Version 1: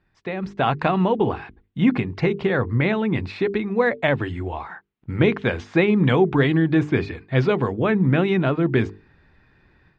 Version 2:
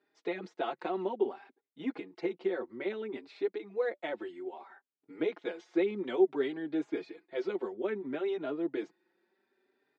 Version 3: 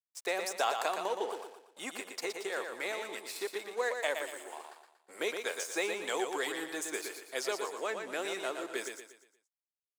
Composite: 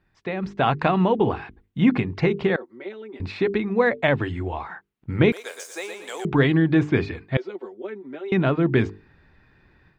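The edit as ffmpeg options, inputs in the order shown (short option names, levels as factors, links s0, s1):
-filter_complex "[1:a]asplit=2[s0][s1];[0:a]asplit=4[s2][s3][s4][s5];[s2]atrim=end=2.562[s6];[s0]atrim=start=2.558:end=3.202[s7];[s3]atrim=start=3.198:end=5.322[s8];[2:a]atrim=start=5.318:end=6.252[s9];[s4]atrim=start=6.248:end=7.372[s10];[s1]atrim=start=7.368:end=8.322[s11];[s5]atrim=start=8.318[s12];[s6][s7]acrossfade=d=0.004:c1=hsin:c2=hsin[s13];[s13][s8]acrossfade=d=0.004:c1=hsin:c2=hsin[s14];[s14][s9]acrossfade=d=0.004:c1=hsin:c2=hsin[s15];[s15][s10]acrossfade=d=0.004:c1=hsin:c2=hsin[s16];[s16][s11]acrossfade=d=0.004:c1=hsin:c2=hsin[s17];[s17][s12]acrossfade=d=0.004:c1=hsin:c2=hsin"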